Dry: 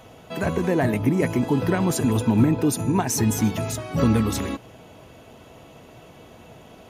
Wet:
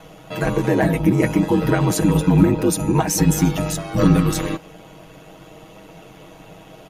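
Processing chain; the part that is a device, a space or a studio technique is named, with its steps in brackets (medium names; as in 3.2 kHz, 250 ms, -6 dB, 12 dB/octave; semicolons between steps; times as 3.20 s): ring-modulated robot voice (ring modulator 48 Hz; comb 6.3 ms, depth 76%); trim +5 dB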